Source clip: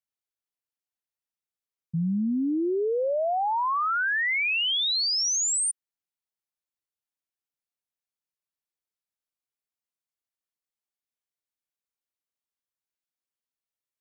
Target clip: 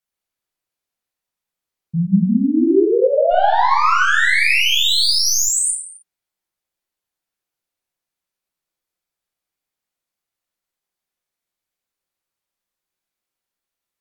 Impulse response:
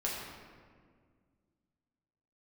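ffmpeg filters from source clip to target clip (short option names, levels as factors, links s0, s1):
-filter_complex "[0:a]asplit=3[s0][s1][s2];[s0]afade=t=out:st=3.3:d=0.02[s3];[s1]aeval=exprs='0.0794*(cos(1*acos(clip(val(0)/0.0794,-1,1)))-cos(1*PI/2))+0.02*(cos(2*acos(clip(val(0)/0.0794,-1,1)))-cos(2*PI/2))+0.00891*(cos(4*acos(clip(val(0)/0.0794,-1,1)))-cos(4*PI/2))+0.00251*(cos(5*acos(clip(val(0)/0.0794,-1,1)))-cos(5*PI/2))+0.000631*(cos(6*acos(clip(val(0)/0.0794,-1,1)))-cos(6*PI/2))':c=same,afade=t=in:st=3.3:d=0.02,afade=t=out:st=5.46:d=0.02[s4];[s2]afade=t=in:st=5.46:d=0.02[s5];[s3][s4][s5]amix=inputs=3:normalize=0[s6];[1:a]atrim=start_sample=2205,afade=t=out:st=0.33:d=0.01,atrim=end_sample=14994,asetrate=39249,aresample=44100[s7];[s6][s7]afir=irnorm=-1:irlink=0,volume=1.78"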